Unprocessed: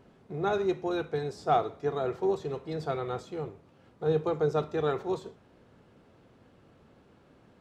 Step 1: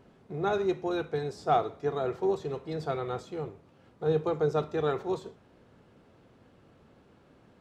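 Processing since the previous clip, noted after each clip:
no processing that can be heard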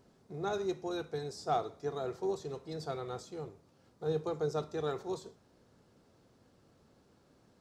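high shelf with overshoot 3,800 Hz +8 dB, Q 1.5
level −6.5 dB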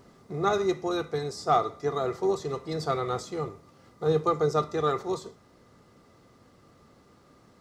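in parallel at +3 dB: speech leveller within 5 dB 2 s
on the sum: hollow resonant body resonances 1,200/2,000 Hz, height 15 dB, ringing for 60 ms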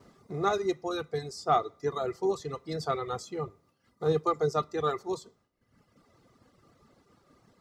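reverb reduction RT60 1.3 s
downward expander −60 dBFS
level −1.5 dB

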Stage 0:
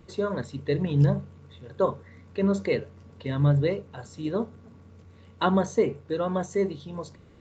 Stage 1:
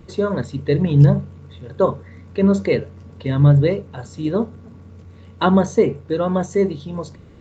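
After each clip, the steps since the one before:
low-shelf EQ 370 Hz +4.5 dB
level +5.5 dB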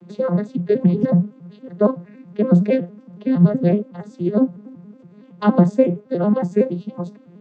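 vocoder with an arpeggio as carrier minor triad, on F3, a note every 93 ms
level +1 dB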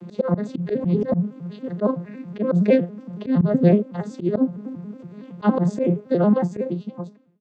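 fade-out on the ending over 1.38 s
volume swells 125 ms
in parallel at +0.5 dB: downward compressor, threshold −28 dBFS, peak gain reduction 15.5 dB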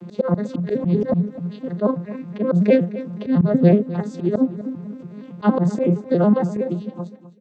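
repeating echo 256 ms, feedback 35%, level −16 dB
level +1.5 dB

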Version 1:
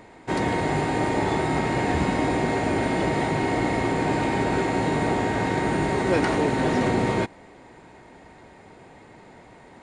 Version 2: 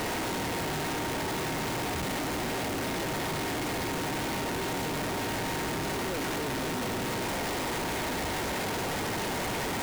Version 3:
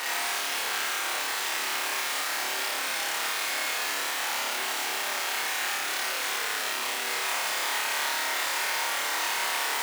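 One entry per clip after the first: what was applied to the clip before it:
sign of each sample alone; level −7 dB
high-pass filter 1,100 Hz 12 dB per octave; on a send: flutter between parallel walls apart 4.9 metres, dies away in 0.94 s; on the sum: level +2.5 dB

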